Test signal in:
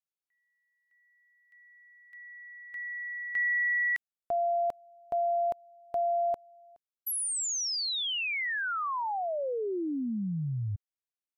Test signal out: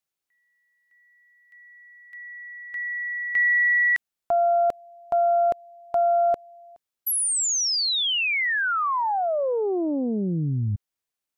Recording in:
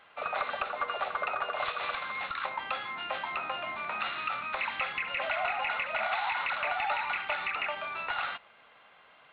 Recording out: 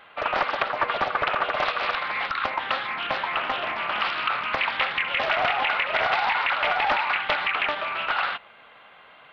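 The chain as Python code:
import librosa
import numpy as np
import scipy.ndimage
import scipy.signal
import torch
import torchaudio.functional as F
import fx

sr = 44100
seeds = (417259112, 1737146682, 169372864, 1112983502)

y = fx.doppler_dist(x, sr, depth_ms=0.65)
y = y * librosa.db_to_amplitude(8.0)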